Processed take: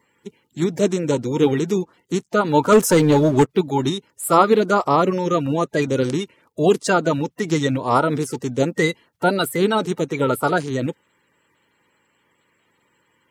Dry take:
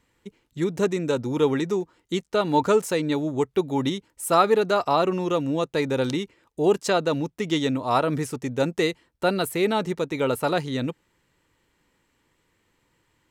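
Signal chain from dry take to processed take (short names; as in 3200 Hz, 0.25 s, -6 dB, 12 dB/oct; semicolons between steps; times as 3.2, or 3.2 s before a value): bin magnitudes rounded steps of 30 dB; HPF 110 Hz; 2.72–3.49 sample leveller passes 2; gain +5 dB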